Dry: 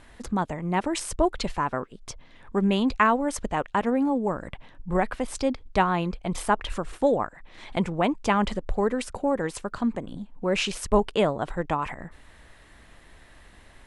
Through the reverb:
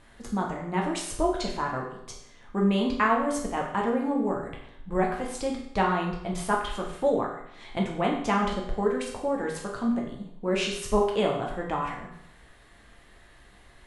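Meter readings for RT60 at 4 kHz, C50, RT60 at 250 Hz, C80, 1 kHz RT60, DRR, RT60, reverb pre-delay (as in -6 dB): 0.70 s, 5.0 dB, 0.70 s, 8.0 dB, 0.70 s, -1.0 dB, 0.70 s, 8 ms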